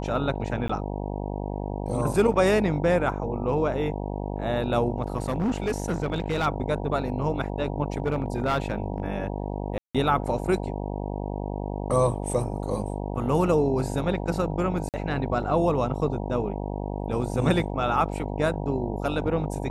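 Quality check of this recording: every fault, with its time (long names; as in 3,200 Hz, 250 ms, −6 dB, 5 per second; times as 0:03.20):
mains buzz 50 Hz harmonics 19 −31 dBFS
0:00.68–0:00.69: drop-out 14 ms
0:05.18–0:06.47: clipping −21 dBFS
0:07.92–0:09.00: clipping −19.5 dBFS
0:09.78–0:09.95: drop-out 166 ms
0:14.89–0:14.94: drop-out 48 ms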